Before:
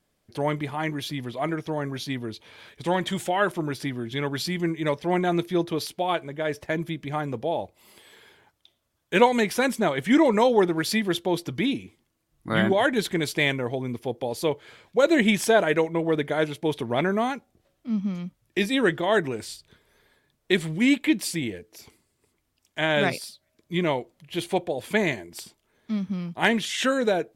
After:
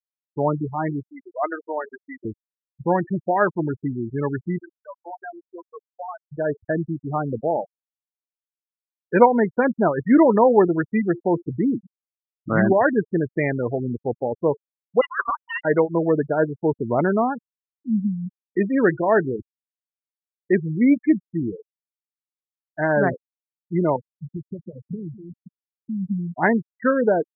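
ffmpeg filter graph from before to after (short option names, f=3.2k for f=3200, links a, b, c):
-filter_complex "[0:a]asettb=1/sr,asplit=3[a][b][c];[a]atrim=end=1.084[d];[b]atrim=start=1.08:end=2.25,asetpts=PTS-STARTPTS,afade=t=in:d=0.004:c=qsin,afade=t=out:st=1.166:d=0.004:c=qsin,highpass=500,highshelf=f=2.2k:g=10.5[e];[c]atrim=start=2.246[f];[d][e]acrossfade=d=0.004:c1=hsin:c2=qsin[g];[g][f]acrossfade=d=0.004:c1=qsin:c2=hsin,asettb=1/sr,asplit=3[h][i][j];[h]atrim=end=4.584[k];[i]atrim=start=4.58:end=6.32,asetpts=PTS-STARTPTS,afade=t=in:d=0.004:c=qsin,afade=t=out:st=1.736:d=0.004:c=qsin,highpass=940,acompressor=threshold=-32dB:ratio=4:attack=3.2:release=140:knee=1:detection=peak[l];[j]atrim=start=6.316[m];[k][l]acrossfade=d=0.004:c1=hsin:c2=qsin[n];[n][m]acrossfade=d=0.004:c1=qsin:c2=hsin,asettb=1/sr,asplit=3[o][p][q];[o]atrim=end=15.014[r];[p]atrim=start=15.01:end=15.65,asetpts=PTS-STARTPTS,afade=t=in:d=0.004:c=qsin,afade=t=out:st=0.636:d=0.004:c=qsin,highpass=f=860:p=1,lowpass=f=2.9k:t=q:w=0.5098,lowpass=f=2.9k:t=q:w=0.6013,lowpass=f=2.9k:t=q:w=0.9,lowpass=f=2.9k:t=q:w=2.563,afreqshift=-3400[s];[q]atrim=start=15.646[t];[r][s]acrossfade=d=0.004:c1=hsin:c2=qsin[u];[u][t]acrossfade=d=0.004:c1=qsin:c2=hsin,asettb=1/sr,asplit=3[v][w][x];[v]atrim=end=23.964[y];[w]atrim=start=23.96:end=26.09,asetpts=PTS-STARTPTS,afade=t=in:d=0.004:c=qsin,afade=t=out:st=2.126:d=0.004:c=qsin,acompressor=threshold=-38dB:ratio=6:attack=3.2:release=140:knee=1:detection=peak,tremolo=f=260:d=0.462,equalizer=f=150:t=o:w=1.7:g=14.5[z];[x]atrim=start=26.086[aa];[y][z]acrossfade=d=0.004:c1=hsin:c2=qsin[ab];[ab][aa]acrossfade=d=0.004:c1=qsin:c2=hsin,lowpass=f=1.7k:w=0.5412,lowpass=f=1.7k:w=1.3066,afftfilt=real='re*gte(hypot(re,im),0.0708)':imag='im*gte(hypot(re,im),0.0708)':win_size=1024:overlap=0.75,volume=4.5dB"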